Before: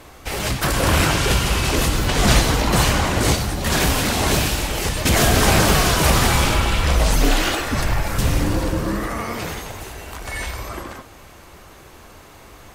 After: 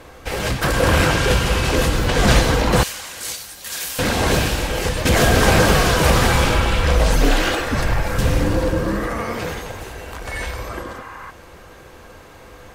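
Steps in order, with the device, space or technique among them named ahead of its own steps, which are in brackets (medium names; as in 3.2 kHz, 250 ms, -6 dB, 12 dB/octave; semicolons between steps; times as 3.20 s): inside a helmet (treble shelf 5.4 kHz -6 dB; small resonant body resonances 500/1600 Hz, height 10 dB, ringing for 85 ms); 2.83–3.99 s: pre-emphasis filter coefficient 0.97; 10.87–11.28 s: spectral replace 760–2900 Hz before; trim +1 dB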